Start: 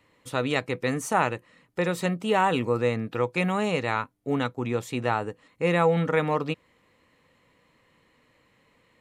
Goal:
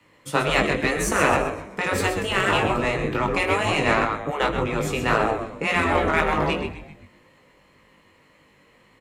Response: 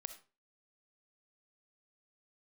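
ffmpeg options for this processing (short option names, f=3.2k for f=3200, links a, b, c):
-filter_complex "[0:a]bandreject=f=3.8k:w=14,asplit=6[a][b][c][d][e][f];[b]adelay=129,afreqshift=-98,volume=-7.5dB[g];[c]adelay=258,afreqshift=-196,volume=-15dB[h];[d]adelay=387,afreqshift=-294,volume=-22.6dB[i];[e]adelay=516,afreqshift=-392,volume=-30.1dB[j];[f]adelay=645,afreqshift=-490,volume=-37.6dB[k];[a][g][h][i][j][k]amix=inputs=6:normalize=0,afreqshift=13,asplit=2[l][m];[1:a]atrim=start_sample=2205[n];[m][n]afir=irnorm=-1:irlink=0,volume=12.5dB[o];[l][o]amix=inputs=2:normalize=0,flanger=delay=19:depth=2:speed=1.9,bandreject=f=60:t=h:w=6,bandreject=f=120:t=h:w=6,bandreject=f=180:t=h:w=6,afftfilt=real='re*lt(hypot(re,im),0.631)':imag='im*lt(hypot(re,im),0.631)':win_size=1024:overlap=0.75,adynamicequalizer=threshold=0.0112:dfrequency=520:dqfactor=1.9:tfrequency=520:tqfactor=1.9:attack=5:release=100:ratio=0.375:range=1.5:mode=boostabove:tftype=bell,aeval=exprs='0.501*(cos(1*acos(clip(val(0)/0.501,-1,1)))-cos(1*PI/2))+0.0158*(cos(7*acos(clip(val(0)/0.501,-1,1)))-cos(7*PI/2))':c=same"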